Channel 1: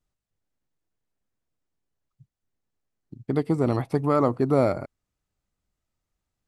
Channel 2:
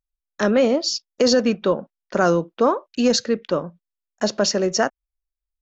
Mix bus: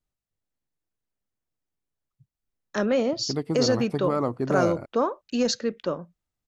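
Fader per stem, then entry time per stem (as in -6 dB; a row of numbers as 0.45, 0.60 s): -4.5, -6.0 dB; 0.00, 2.35 s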